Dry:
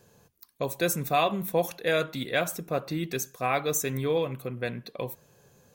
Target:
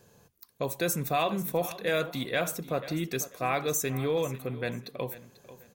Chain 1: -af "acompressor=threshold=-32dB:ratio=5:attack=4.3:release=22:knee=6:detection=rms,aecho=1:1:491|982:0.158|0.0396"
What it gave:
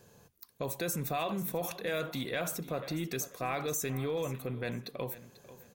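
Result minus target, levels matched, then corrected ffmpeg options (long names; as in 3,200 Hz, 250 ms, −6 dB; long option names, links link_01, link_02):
downward compressor: peak gain reduction +7 dB
-af "acompressor=threshold=-23dB:ratio=5:attack=4.3:release=22:knee=6:detection=rms,aecho=1:1:491|982:0.158|0.0396"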